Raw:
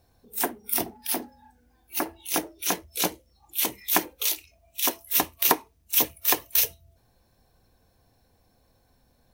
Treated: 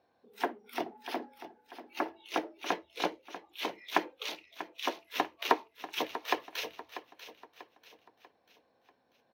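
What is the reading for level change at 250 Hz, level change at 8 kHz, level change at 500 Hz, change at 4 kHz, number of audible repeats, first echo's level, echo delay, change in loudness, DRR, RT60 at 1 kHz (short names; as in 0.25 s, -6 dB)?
-5.5 dB, -22.0 dB, -2.5 dB, -8.0 dB, 3, -13.0 dB, 0.641 s, -11.0 dB, none, none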